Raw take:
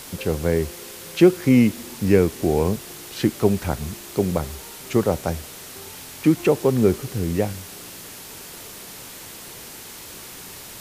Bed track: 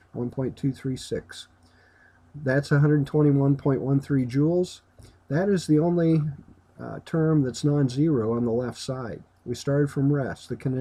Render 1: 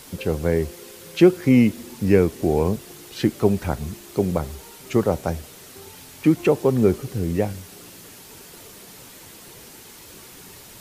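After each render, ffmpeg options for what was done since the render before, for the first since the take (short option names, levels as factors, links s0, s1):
-af "afftdn=nr=6:nf=-39"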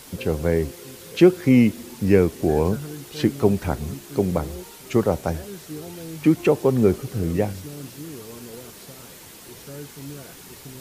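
-filter_complex "[1:a]volume=0.168[s0];[0:a][s0]amix=inputs=2:normalize=0"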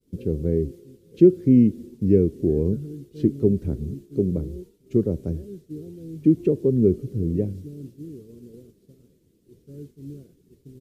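-af "agate=range=0.0224:threshold=0.02:ratio=3:detection=peak,firequalizer=gain_entry='entry(390,0);entry(780,-28);entry(3400,-20)':delay=0.05:min_phase=1"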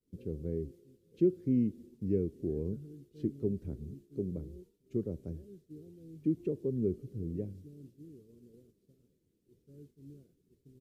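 -af "volume=0.211"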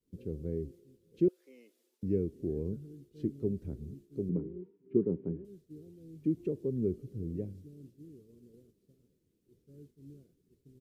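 -filter_complex "[0:a]asettb=1/sr,asplit=3[s0][s1][s2];[s0]atrim=end=1.284[s3];[s1]atrim=start=1.28:end=2.03,asetpts=PTS-STARTPTS,afade=t=in:d=0.004:c=qsin,afade=t=out:st=0.746:d=0.004:c=qsin,highpass=f=640:w=0.5412,highpass=f=640:w=1.3066[s4];[s2]atrim=start=2.026[s5];[s3][s4]acrossfade=d=0.004:c1=hsin:c2=qsin[s6];[s6][s5]acrossfade=d=0.004:c1=qsin:c2=hsin,asettb=1/sr,asplit=3[s7][s8][s9];[s7]atrim=end=4.294[s10];[s8]atrim=start=4.29:end=5.45,asetpts=PTS-STARTPTS,afade=t=in:d=0.004:c=qsin,afade=t=out:st=1.156:d=0.004:c=qsin,highpass=120,equalizer=f=180:t=q:w=4:g=9,equalizer=f=280:t=q:w=4:g=8,equalizer=f=400:t=q:w=4:g=10,equalizer=f=600:t=q:w=4:g=-7,equalizer=f=960:t=q:w=4:g=8,lowpass=f=2300:w=0.5412,lowpass=f=2300:w=1.3066[s11];[s9]atrim=start=5.446[s12];[s10][s11]acrossfade=d=0.004:c1=hsin:c2=qsin[s13];[s13][s12]acrossfade=d=0.004:c1=qsin:c2=hsin"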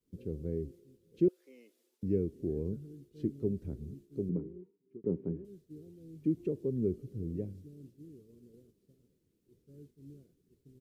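-filter_complex "[0:a]asplit=2[s0][s1];[s0]atrim=end=5.04,asetpts=PTS-STARTPTS,afade=t=out:st=4.23:d=0.81[s2];[s1]atrim=start=5.04,asetpts=PTS-STARTPTS,afade=t=in:d=0.004:c=hsin[s3];[s2][s3]concat=n=2:v=0:a=1"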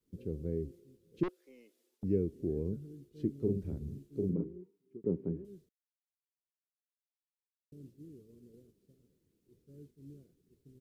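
-filter_complex "[0:a]asettb=1/sr,asplit=3[s0][s1][s2];[s0]atrim=end=1.234[s3];[s1]atrim=start=1.23:end=2.04,asetpts=PTS-STARTPTS,afade=t=in:d=0.004:c=qsin,afade=t=out:st=0.806:d=0.004:c=qsin,aeval=exprs='(tanh(50.1*val(0)+0.4)-tanh(0.4))/50.1':c=same[s4];[s2]atrim=start=2.036[s5];[s3][s4]acrossfade=d=0.004:c1=hsin:c2=qsin[s6];[s6][s5]acrossfade=d=0.004:c1=qsin:c2=hsin,asettb=1/sr,asplit=3[s7][s8][s9];[s7]atrim=end=3.384[s10];[s8]atrim=start=3.38:end=4.44,asetpts=PTS-STARTPTS,afade=t=in:d=0.004:c=qsin,afade=t=out:st=1.056:d=0.004:c=qsin,asplit=2[s11][s12];[s12]adelay=42,volume=0.708[s13];[s11][s13]amix=inputs=2:normalize=0,atrim=end_sample=46746[s14];[s9]atrim=start=4.436[s15];[s10][s14]acrossfade=d=0.004:c1=hsin:c2=qsin[s16];[s16][s15]acrossfade=d=0.004:c1=qsin:c2=hsin,asplit=3[s17][s18][s19];[s17]atrim=end=5.69,asetpts=PTS-STARTPTS,afade=t=out:st=5.686:d=0.004:c=hsin[s20];[s18]atrim=start=5.69:end=7.72,asetpts=PTS-STARTPTS,volume=0[s21];[s19]atrim=start=7.72,asetpts=PTS-STARTPTS,afade=t=in:d=0.004:c=hsin[s22];[s20][s21][s22]concat=n=3:v=0:a=1"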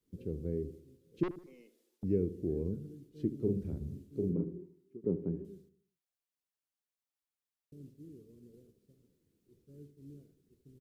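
-filter_complex "[0:a]asplit=2[s0][s1];[s1]adelay=76,lowpass=f=1200:p=1,volume=0.224,asplit=2[s2][s3];[s3]adelay=76,lowpass=f=1200:p=1,volume=0.48,asplit=2[s4][s5];[s5]adelay=76,lowpass=f=1200:p=1,volume=0.48,asplit=2[s6][s7];[s7]adelay=76,lowpass=f=1200:p=1,volume=0.48,asplit=2[s8][s9];[s9]adelay=76,lowpass=f=1200:p=1,volume=0.48[s10];[s0][s2][s4][s6][s8][s10]amix=inputs=6:normalize=0"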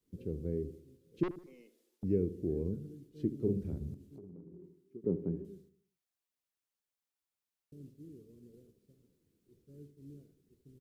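-filter_complex "[0:a]asettb=1/sr,asplit=3[s0][s1][s2];[s0]atrim=end=3.944[s3];[s1]atrim=start=3.94:end=4.64,asetpts=PTS-STARTPTS,afade=t=in:d=0.004:c=qsin,afade=t=out:st=0.696:d=0.004:c=qsin,acompressor=threshold=0.00398:ratio=8:attack=3.2:release=140:knee=1:detection=peak[s4];[s2]atrim=start=4.636[s5];[s3][s4]acrossfade=d=0.004:c1=hsin:c2=qsin[s6];[s6][s5]acrossfade=d=0.004:c1=qsin:c2=hsin"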